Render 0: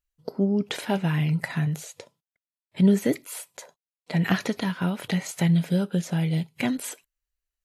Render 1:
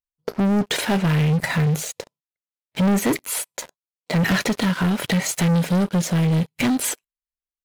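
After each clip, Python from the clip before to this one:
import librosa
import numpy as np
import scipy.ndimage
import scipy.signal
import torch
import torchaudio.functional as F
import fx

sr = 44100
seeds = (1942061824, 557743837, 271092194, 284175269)

y = fx.leveller(x, sr, passes=5)
y = y * librosa.db_to_amplitude(-6.5)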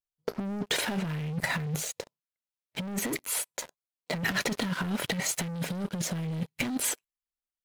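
y = fx.over_compress(x, sr, threshold_db=-21.0, ratio=-0.5)
y = y * librosa.db_to_amplitude(-8.0)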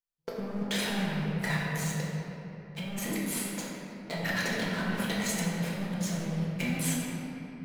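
y = fx.room_shoebox(x, sr, seeds[0], volume_m3=180.0, walls='hard', distance_m=0.81)
y = y * librosa.db_to_amplitude(-6.5)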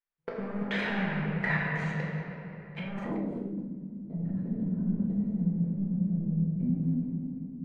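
y = fx.filter_sweep_lowpass(x, sr, from_hz=2000.0, to_hz=230.0, start_s=2.86, end_s=3.68, q=1.6)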